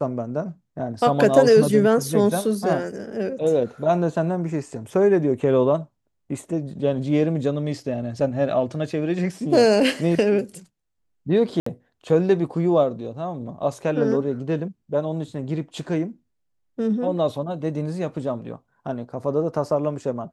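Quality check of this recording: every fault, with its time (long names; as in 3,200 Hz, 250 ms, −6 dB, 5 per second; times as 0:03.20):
0:11.60–0:11.66: drop-out 64 ms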